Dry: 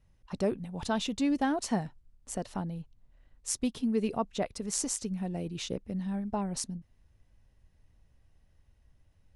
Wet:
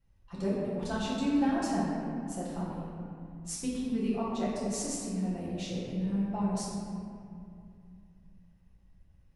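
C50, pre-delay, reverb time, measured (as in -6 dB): -2.0 dB, 6 ms, 2.5 s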